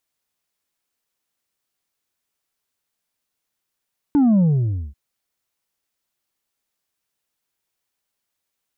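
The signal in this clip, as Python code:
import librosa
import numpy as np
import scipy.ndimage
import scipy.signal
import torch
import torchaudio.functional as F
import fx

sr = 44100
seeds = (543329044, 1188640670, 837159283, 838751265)

y = fx.sub_drop(sr, level_db=-12.5, start_hz=300.0, length_s=0.79, drive_db=3.5, fade_s=0.55, end_hz=65.0)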